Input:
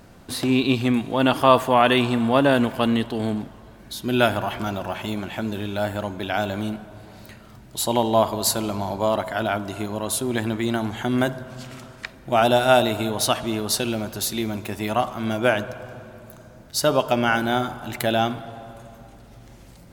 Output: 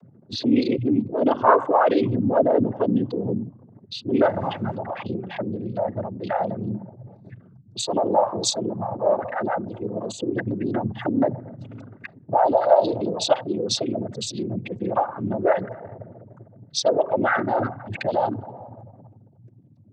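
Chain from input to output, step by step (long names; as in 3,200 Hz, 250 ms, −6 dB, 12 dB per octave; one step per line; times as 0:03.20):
spectral envelope exaggerated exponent 3
0:04.21–0:04.74: wind on the microphone 200 Hz −22 dBFS
cochlear-implant simulation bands 16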